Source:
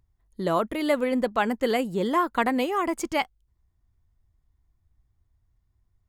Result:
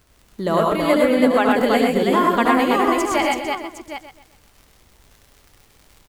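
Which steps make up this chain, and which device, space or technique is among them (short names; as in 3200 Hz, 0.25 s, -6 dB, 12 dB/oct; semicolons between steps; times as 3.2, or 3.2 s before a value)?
vinyl LP (crackle 32/s -40 dBFS; pink noise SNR 36 dB); 0.97–1.49 resonant low shelf 220 Hz -7 dB, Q 3; tapped delay 73/103/123/328/761 ms -7/-3/-4.5/-3.5/-10.5 dB; feedback echo 0.128 s, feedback 36%, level -11 dB; gain +3.5 dB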